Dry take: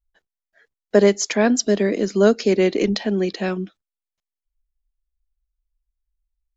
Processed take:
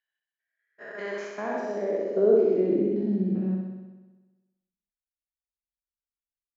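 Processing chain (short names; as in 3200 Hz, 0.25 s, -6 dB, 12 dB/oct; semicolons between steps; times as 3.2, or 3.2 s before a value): stepped spectrum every 0.2 s; gate -27 dBFS, range -10 dB; band-pass sweep 2500 Hz -> 210 Hz, 0.45–3.13; on a send: flutter echo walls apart 10.9 m, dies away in 1.2 s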